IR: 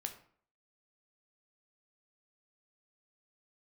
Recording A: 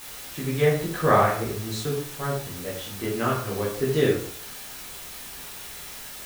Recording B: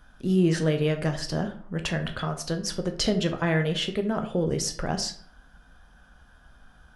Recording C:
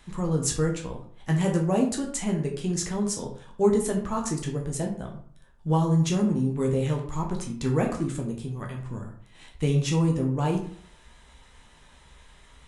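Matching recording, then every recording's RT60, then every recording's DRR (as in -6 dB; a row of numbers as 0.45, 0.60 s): B; 0.55, 0.55, 0.55 s; -6.0, 5.0, 0.0 dB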